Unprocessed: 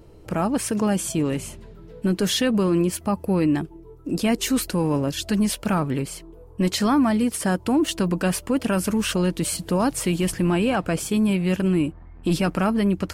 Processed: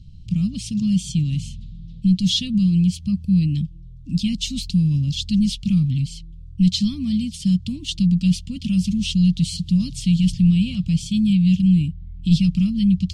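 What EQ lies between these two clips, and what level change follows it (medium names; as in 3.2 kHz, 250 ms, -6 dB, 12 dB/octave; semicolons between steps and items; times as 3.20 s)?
elliptic band-stop 180–3400 Hz, stop band 40 dB; distance through air 140 m; +9.0 dB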